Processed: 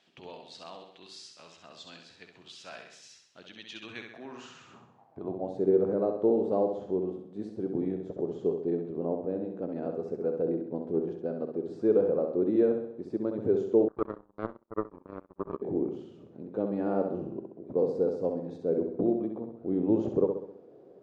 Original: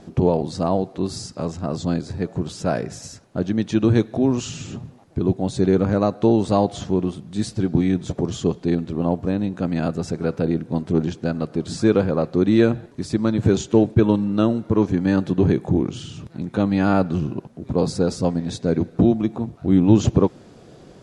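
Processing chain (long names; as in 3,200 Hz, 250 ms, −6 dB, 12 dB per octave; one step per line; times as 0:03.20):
flutter between parallel walls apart 11.2 metres, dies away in 0.67 s
band-pass filter sweep 3,000 Hz → 450 Hz, 0:03.77–0:05.69
0:13.88–0:15.62: power curve on the samples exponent 3
level −4 dB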